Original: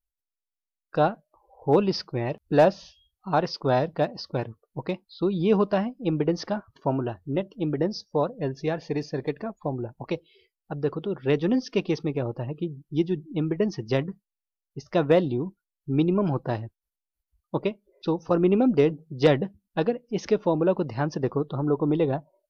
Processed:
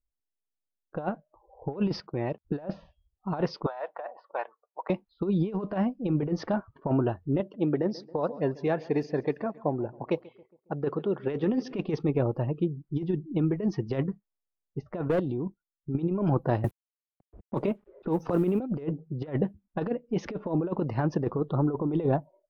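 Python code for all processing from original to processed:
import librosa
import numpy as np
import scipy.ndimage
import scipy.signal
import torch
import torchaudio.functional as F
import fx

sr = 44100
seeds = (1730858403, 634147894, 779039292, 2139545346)

y = fx.chain(x, sr, fx.highpass(hz=110.0, slope=12),
    fx.level_steps(step_db=16), at=(2.0, 2.45))
y = fx.chain(y, sr, fx.highpass(hz=710.0, slope=24),
    fx.high_shelf(hz=2900.0, db=-8.5),
    fx.over_compress(threshold_db=-36.0, ratio=-1.0), at=(3.66, 4.9))
y = fx.chain(y, sr, fx.highpass(hz=200.0, slope=6),
    fx.echo_feedback(ms=137, feedback_pct=51, wet_db=-22), at=(7.4, 11.73))
y = fx.chain(y, sr, fx.level_steps(step_db=11),
    fx.clip_hard(threshold_db=-22.0), at=(15.01, 15.95))
y = fx.chain(y, sr, fx.law_mismatch(coded='A'),
    fx.transient(attack_db=-2, sustain_db=7),
    fx.band_squash(depth_pct=100), at=(16.64, 18.6))
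y = fx.over_compress(y, sr, threshold_db=-25.0, ratio=-0.5)
y = fx.peak_eq(y, sr, hz=5300.0, db=-11.5, octaves=1.8)
y = fx.env_lowpass(y, sr, base_hz=600.0, full_db=-23.5)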